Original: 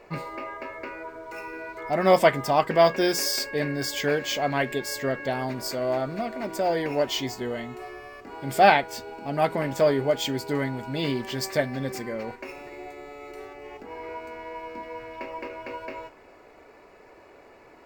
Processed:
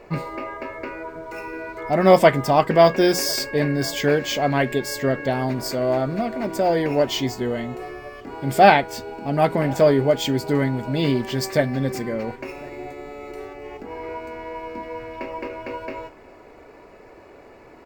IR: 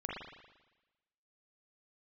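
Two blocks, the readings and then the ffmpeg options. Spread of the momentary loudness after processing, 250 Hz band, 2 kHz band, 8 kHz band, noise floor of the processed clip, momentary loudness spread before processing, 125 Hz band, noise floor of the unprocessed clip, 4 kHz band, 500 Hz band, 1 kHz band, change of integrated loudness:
20 LU, +7.0 dB, +3.0 dB, +2.5 dB, -47 dBFS, 20 LU, +8.5 dB, -52 dBFS, +2.5 dB, +5.0 dB, +4.0 dB, +5.0 dB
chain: -filter_complex "[0:a]lowshelf=f=440:g=6.5,asplit=2[s0][s1];[s1]adelay=1050,volume=0.0631,highshelf=f=4000:g=-23.6[s2];[s0][s2]amix=inputs=2:normalize=0,volume=1.33"

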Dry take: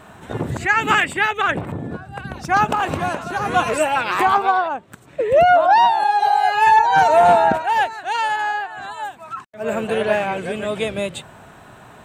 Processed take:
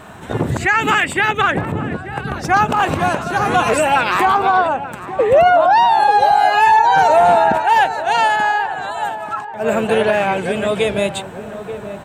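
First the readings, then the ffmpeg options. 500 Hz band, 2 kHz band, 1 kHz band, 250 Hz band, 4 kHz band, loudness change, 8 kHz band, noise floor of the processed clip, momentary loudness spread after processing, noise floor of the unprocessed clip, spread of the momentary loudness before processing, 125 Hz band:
+3.5 dB, +3.0 dB, +3.0 dB, +5.0 dB, +3.5 dB, +2.5 dB, +4.0 dB, -31 dBFS, 13 LU, -44 dBFS, 17 LU, +5.0 dB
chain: -filter_complex "[0:a]alimiter=limit=0.299:level=0:latency=1:release=65,asplit=2[s0][s1];[s1]adelay=885,lowpass=f=960:p=1,volume=0.299,asplit=2[s2][s3];[s3]adelay=885,lowpass=f=960:p=1,volume=0.54,asplit=2[s4][s5];[s5]adelay=885,lowpass=f=960:p=1,volume=0.54,asplit=2[s6][s7];[s7]adelay=885,lowpass=f=960:p=1,volume=0.54,asplit=2[s8][s9];[s9]adelay=885,lowpass=f=960:p=1,volume=0.54,asplit=2[s10][s11];[s11]adelay=885,lowpass=f=960:p=1,volume=0.54[s12];[s2][s4][s6][s8][s10][s12]amix=inputs=6:normalize=0[s13];[s0][s13]amix=inputs=2:normalize=0,volume=1.88"

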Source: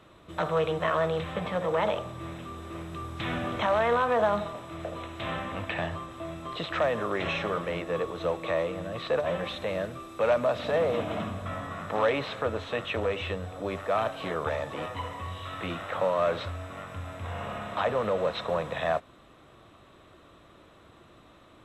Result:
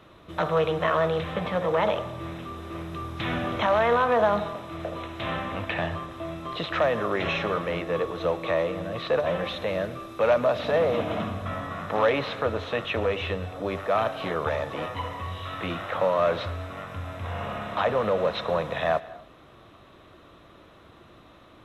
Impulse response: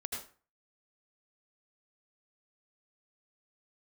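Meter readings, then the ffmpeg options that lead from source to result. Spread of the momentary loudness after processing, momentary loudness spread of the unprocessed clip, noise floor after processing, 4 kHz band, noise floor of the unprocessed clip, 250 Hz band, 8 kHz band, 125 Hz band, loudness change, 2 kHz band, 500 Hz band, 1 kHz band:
12 LU, 12 LU, -52 dBFS, +3.0 dB, -55 dBFS, +3.0 dB, no reading, +3.0 dB, +3.0 dB, +3.0 dB, +3.0 dB, +3.0 dB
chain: -filter_complex "[0:a]equalizer=f=8000:w=4.4:g=-11,asplit=2[s0][s1];[1:a]atrim=start_sample=2205,adelay=115[s2];[s1][s2]afir=irnorm=-1:irlink=0,volume=0.119[s3];[s0][s3]amix=inputs=2:normalize=0,volume=1.41"

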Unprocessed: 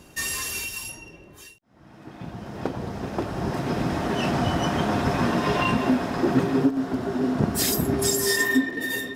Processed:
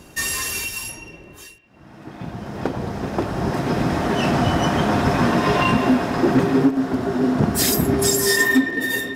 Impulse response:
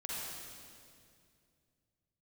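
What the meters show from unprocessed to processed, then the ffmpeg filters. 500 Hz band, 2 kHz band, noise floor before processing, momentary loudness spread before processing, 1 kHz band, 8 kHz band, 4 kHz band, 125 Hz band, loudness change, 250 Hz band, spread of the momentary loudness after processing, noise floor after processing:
+5.0 dB, +5.5 dB, -50 dBFS, 11 LU, +5.0 dB, +4.5 dB, +4.0 dB, +5.0 dB, +5.0 dB, +4.5 dB, 11 LU, -45 dBFS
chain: -filter_complex "[0:a]asplit=2[s0][s1];[s1]lowpass=f=2400:t=q:w=2.7[s2];[1:a]atrim=start_sample=2205[s3];[s2][s3]afir=irnorm=-1:irlink=0,volume=0.112[s4];[s0][s4]amix=inputs=2:normalize=0,volume=4.73,asoftclip=hard,volume=0.211,volume=1.68"

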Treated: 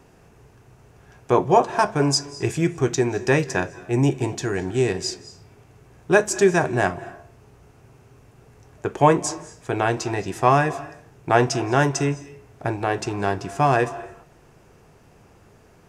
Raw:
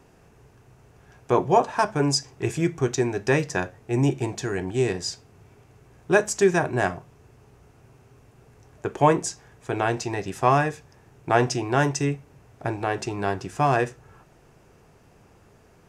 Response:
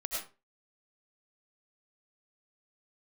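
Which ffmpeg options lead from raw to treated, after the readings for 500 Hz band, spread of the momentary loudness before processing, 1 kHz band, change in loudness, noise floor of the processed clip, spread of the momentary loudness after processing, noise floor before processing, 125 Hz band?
+2.5 dB, 12 LU, +2.5 dB, +2.5 dB, -53 dBFS, 13 LU, -56 dBFS, +2.5 dB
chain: -filter_complex "[0:a]asplit=2[s0][s1];[1:a]atrim=start_sample=2205,asetrate=23373,aresample=44100,adelay=19[s2];[s1][s2]afir=irnorm=-1:irlink=0,volume=0.0631[s3];[s0][s3]amix=inputs=2:normalize=0,volume=1.33"

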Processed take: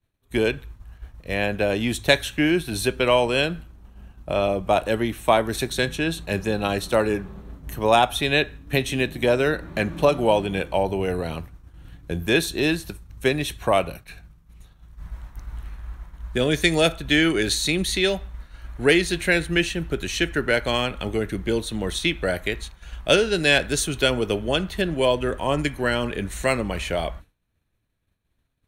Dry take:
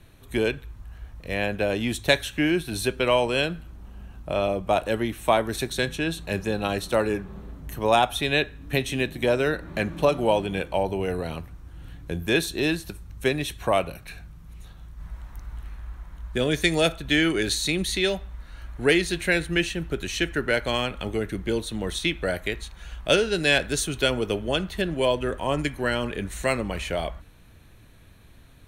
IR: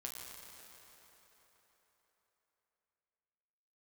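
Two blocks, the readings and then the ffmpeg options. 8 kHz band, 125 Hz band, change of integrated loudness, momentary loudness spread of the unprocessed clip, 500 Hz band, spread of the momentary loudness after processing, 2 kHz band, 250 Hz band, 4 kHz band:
+2.5 dB, +2.5 dB, +2.5 dB, 19 LU, +2.5 dB, 14 LU, +2.5 dB, +2.5 dB, +2.5 dB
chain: -af "agate=range=0.0224:threshold=0.0178:ratio=3:detection=peak,volume=1.33"

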